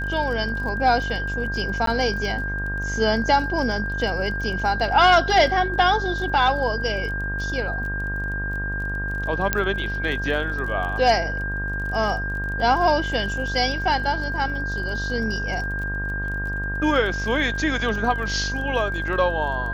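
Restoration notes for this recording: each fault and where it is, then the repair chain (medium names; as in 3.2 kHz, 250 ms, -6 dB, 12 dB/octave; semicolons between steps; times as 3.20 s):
buzz 50 Hz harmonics 27 -29 dBFS
crackle 26 per s -32 dBFS
whine 1.6 kHz -27 dBFS
1.86–1.87 s: dropout 13 ms
9.53 s: pop -4 dBFS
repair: de-click; de-hum 50 Hz, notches 27; band-stop 1.6 kHz, Q 30; interpolate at 1.86 s, 13 ms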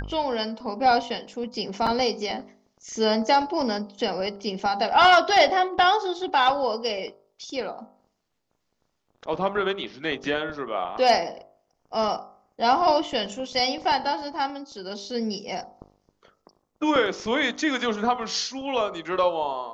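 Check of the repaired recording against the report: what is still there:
nothing left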